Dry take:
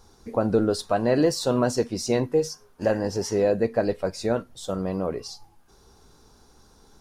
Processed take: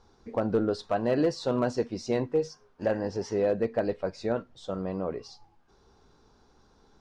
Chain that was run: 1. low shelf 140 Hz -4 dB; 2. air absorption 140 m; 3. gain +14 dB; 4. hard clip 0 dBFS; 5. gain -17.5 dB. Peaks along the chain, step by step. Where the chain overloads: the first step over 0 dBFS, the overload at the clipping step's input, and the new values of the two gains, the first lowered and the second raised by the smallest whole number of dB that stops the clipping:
-10.0, -10.5, +3.5, 0.0, -17.5 dBFS; step 3, 3.5 dB; step 3 +10 dB, step 5 -13.5 dB

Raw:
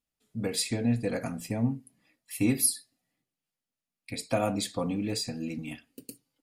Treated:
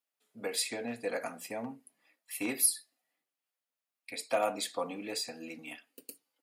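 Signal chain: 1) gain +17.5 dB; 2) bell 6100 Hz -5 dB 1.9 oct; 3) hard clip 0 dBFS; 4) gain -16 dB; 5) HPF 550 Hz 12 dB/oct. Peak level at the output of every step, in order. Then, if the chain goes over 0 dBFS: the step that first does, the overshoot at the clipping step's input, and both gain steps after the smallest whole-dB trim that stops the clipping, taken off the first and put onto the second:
+6.0, +4.0, 0.0, -16.0, -15.5 dBFS; step 1, 4.0 dB; step 1 +13.5 dB, step 4 -12 dB

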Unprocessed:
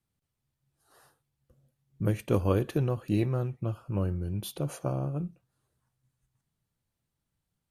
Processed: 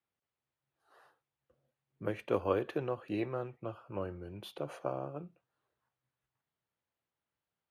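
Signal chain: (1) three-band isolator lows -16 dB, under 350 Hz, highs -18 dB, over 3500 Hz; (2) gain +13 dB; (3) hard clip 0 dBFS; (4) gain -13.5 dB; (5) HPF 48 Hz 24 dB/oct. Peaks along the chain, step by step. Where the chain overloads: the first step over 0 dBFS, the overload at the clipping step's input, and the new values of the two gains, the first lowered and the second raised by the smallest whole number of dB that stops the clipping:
-16.0, -3.0, -3.0, -16.5, -16.5 dBFS; no overload

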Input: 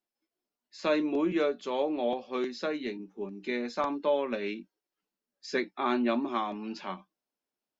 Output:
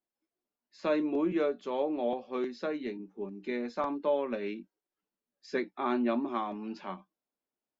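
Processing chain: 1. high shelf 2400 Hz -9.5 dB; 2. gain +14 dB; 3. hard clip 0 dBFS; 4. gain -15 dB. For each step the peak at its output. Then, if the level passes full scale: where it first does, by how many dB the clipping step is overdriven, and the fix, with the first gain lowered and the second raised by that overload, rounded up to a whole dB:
-17.0, -3.0, -3.0, -18.0 dBFS; no overload

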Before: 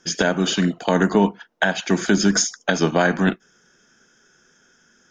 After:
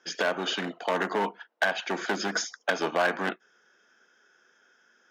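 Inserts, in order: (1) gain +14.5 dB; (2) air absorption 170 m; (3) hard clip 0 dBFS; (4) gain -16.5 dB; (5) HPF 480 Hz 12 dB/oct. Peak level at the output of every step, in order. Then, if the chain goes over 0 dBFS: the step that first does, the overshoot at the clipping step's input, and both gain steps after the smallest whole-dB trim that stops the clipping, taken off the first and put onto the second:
+10.5, +9.5, 0.0, -16.5, -12.0 dBFS; step 1, 9.5 dB; step 1 +4.5 dB, step 4 -6.5 dB

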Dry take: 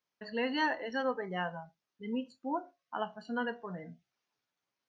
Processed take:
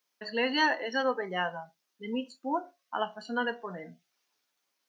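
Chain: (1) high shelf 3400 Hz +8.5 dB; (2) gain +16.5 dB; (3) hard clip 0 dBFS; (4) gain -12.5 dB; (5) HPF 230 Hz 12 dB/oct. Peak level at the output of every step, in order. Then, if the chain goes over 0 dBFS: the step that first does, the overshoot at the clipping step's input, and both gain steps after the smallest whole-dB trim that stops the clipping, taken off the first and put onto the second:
-19.5, -3.0, -3.0, -15.5, -15.0 dBFS; no overload

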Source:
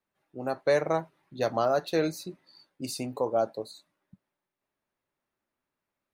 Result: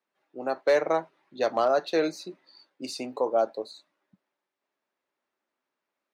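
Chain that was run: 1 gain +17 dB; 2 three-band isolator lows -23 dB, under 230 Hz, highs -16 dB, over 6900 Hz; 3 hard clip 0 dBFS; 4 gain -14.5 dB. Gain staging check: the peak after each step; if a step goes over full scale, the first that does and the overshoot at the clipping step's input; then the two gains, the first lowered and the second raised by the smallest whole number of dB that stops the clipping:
+2.5, +3.0, 0.0, -14.5 dBFS; step 1, 3.0 dB; step 1 +14 dB, step 4 -11.5 dB

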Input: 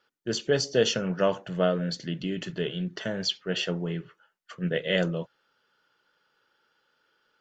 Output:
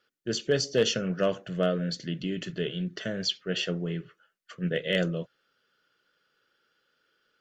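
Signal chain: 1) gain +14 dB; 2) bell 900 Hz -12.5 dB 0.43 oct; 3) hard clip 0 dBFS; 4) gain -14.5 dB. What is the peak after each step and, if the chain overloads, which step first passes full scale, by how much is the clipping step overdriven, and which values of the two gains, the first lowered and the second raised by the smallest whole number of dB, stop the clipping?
+4.0, +3.5, 0.0, -14.5 dBFS; step 1, 3.5 dB; step 1 +10 dB, step 4 -10.5 dB

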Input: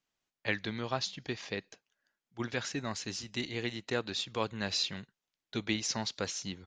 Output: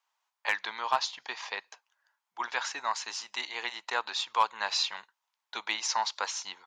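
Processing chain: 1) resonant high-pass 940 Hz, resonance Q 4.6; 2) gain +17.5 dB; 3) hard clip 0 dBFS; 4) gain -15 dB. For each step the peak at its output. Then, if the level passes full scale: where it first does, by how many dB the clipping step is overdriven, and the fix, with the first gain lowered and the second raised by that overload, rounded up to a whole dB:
-13.0, +4.5, 0.0, -15.0 dBFS; step 2, 4.5 dB; step 2 +12.5 dB, step 4 -10 dB

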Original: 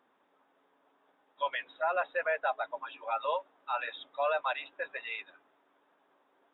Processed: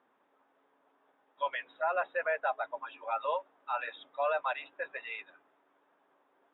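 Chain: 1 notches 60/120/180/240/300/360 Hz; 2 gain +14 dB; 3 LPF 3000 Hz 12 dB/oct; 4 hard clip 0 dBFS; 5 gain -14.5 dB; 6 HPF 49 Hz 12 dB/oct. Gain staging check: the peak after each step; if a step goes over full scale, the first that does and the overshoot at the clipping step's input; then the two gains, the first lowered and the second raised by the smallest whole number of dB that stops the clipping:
-20.0, -6.0, -6.0, -6.0, -20.5, -20.5 dBFS; no overload

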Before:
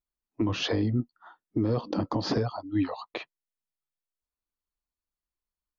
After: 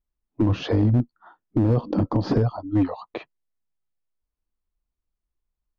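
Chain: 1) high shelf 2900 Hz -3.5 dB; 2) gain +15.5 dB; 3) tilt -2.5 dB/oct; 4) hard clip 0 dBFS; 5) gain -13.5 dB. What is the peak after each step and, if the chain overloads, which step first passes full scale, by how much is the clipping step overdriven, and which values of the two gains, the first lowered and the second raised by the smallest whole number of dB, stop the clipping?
-17.0, -1.5, +5.0, 0.0, -13.5 dBFS; step 3, 5.0 dB; step 2 +10.5 dB, step 5 -8.5 dB

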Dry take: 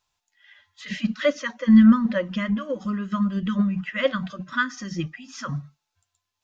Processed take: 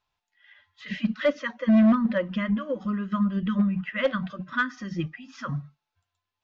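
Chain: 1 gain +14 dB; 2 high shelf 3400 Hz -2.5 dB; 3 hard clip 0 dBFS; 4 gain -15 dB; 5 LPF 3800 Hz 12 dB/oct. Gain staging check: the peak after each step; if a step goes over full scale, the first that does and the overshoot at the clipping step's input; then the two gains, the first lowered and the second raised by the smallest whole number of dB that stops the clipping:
+8.0, +8.0, 0.0, -15.0, -14.5 dBFS; step 1, 8.0 dB; step 1 +6 dB, step 4 -7 dB

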